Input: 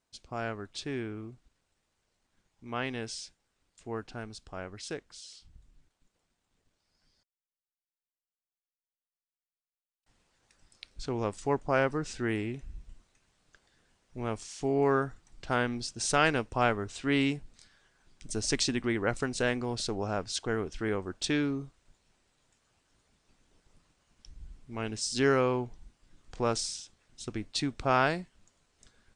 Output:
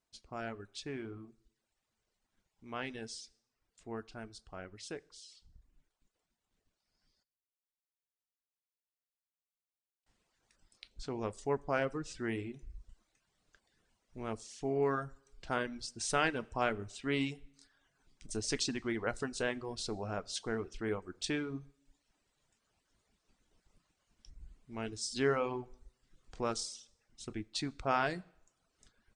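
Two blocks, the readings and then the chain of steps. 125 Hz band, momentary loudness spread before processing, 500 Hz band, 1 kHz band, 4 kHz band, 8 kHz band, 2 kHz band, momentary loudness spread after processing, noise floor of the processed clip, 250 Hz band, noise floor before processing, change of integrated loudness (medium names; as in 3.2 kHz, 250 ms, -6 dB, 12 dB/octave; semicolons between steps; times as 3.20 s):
-8.0 dB, 16 LU, -5.5 dB, -6.0 dB, -5.5 dB, -5.5 dB, -6.0 dB, 17 LU, under -85 dBFS, -7.0 dB, under -85 dBFS, -6.0 dB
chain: two-slope reverb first 0.59 s, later 1.5 s, DRR 9.5 dB; reverb removal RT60 0.67 s; trim -5.5 dB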